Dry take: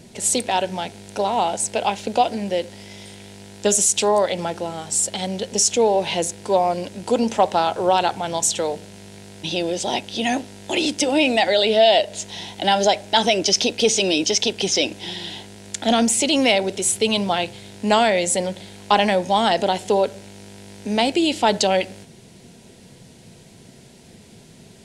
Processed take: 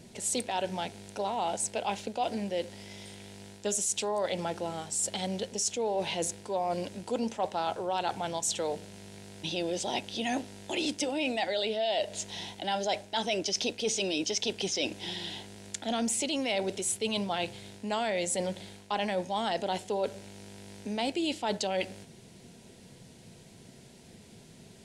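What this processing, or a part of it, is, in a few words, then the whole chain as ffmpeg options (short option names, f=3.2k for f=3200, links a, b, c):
compression on the reversed sound: -af "areverse,acompressor=threshold=-21dB:ratio=5,areverse,volume=-6.5dB"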